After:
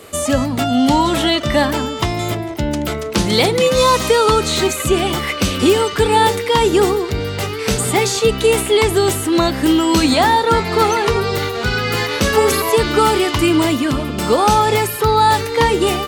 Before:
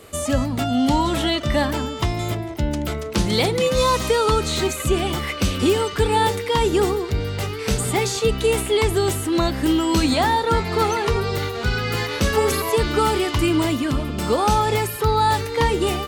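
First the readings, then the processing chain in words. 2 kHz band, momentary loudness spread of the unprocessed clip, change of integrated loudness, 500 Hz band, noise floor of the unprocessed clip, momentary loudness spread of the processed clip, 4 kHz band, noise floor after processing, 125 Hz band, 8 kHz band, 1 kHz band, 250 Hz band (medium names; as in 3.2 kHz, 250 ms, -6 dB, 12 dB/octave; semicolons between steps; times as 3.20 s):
+6.0 dB, 6 LU, +5.0 dB, +5.5 dB, -29 dBFS, 7 LU, +6.0 dB, -24 dBFS, +1.5 dB, +6.0 dB, +6.0 dB, +5.0 dB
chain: bass shelf 88 Hz -10.5 dB; trim +6 dB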